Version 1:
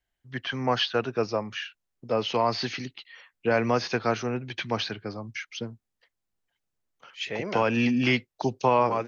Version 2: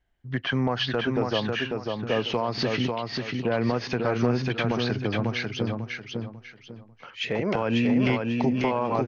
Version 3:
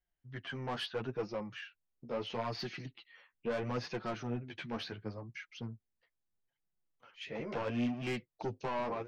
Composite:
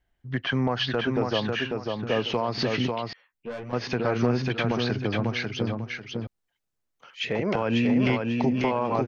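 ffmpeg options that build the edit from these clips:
-filter_complex "[1:a]asplit=3[a][b][c];[a]atrim=end=3.132[d];[2:a]atrim=start=3.128:end=3.732[e];[b]atrim=start=3.728:end=6.272[f];[0:a]atrim=start=6.268:end=7.202[g];[c]atrim=start=7.198[h];[d][e]acrossfade=d=0.004:c1=hsin:c2=hsin[i];[i][f]acrossfade=d=0.004:c1=hsin:c2=hsin[j];[j][g]acrossfade=d=0.004:c1=hsin:c2=hsin[k];[k][h]acrossfade=d=0.004:c1=hsin:c2=hsin"

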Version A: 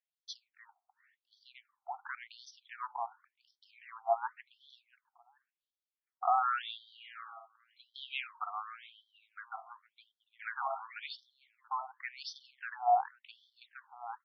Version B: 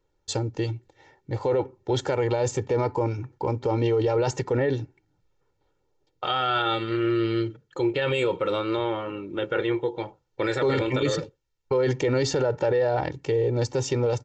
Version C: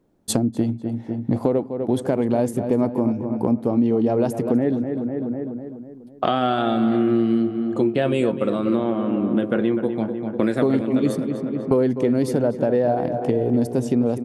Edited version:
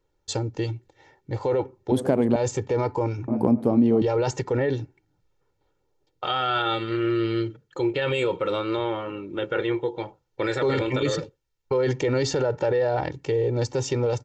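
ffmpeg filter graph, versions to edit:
-filter_complex "[2:a]asplit=2[a][b];[1:a]asplit=3[c][d][e];[c]atrim=end=1.922[f];[a]atrim=start=1.918:end=2.362[g];[d]atrim=start=2.358:end=3.282[h];[b]atrim=start=3.278:end=4.022[i];[e]atrim=start=4.018[j];[f][g]acrossfade=d=0.004:c1=hsin:c2=hsin[k];[k][h]acrossfade=d=0.004:c1=hsin:c2=hsin[l];[l][i]acrossfade=d=0.004:c1=hsin:c2=hsin[m];[m][j]acrossfade=d=0.004:c1=hsin:c2=hsin"

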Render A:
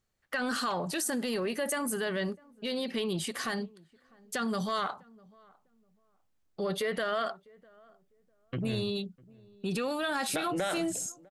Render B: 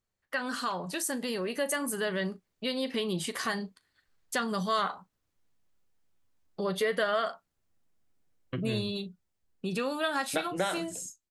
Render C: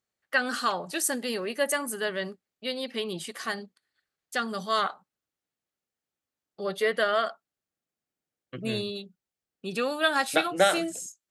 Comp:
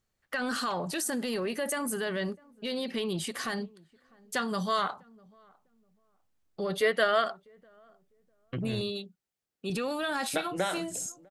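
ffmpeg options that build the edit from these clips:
-filter_complex "[1:a]asplit=2[a][b];[2:a]asplit=2[c][d];[0:a]asplit=5[e][f][g][h][i];[e]atrim=end=4.362[j];[a]atrim=start=4.358:end=4.882[k];[f]atrim=start=4.878:end=6.812[l];[c]atrim=start=6.808:end=7.242[m];[g]atrim=start=7.238:end=8.812[n];[d]atrim=start=8.808:end=9.702[o];[h]atrim=start=9.698:end=10.292[p];[b]atrim=start=10.288:end=10.942[q];[i]atrim=start=10.938[r];[j][k]acrossfade=d=0.004:c1=hsin:c2=hsin[s];[s][l]acrossfade=d=0.004:c1=hsin:c2=hsin[t];[t][m]acrossfade=d=0.004:c1=hsin:c2=hsin[u];[u][n]acrossfade=d=0.004:c1=hsin:c2=hsin[v];[v][o]acrossfade=d=0.004:c1=hsin:c2=hsin[w];[w][p]acrossfade=d=0.004:c1=hsin:c2=hsin[x];[x][q]acrossfade=d=0.004:c1=hsin:c2=hsin[y];[y][r]acrossfade=d=0.004:c1=hsin:c2=hsin"

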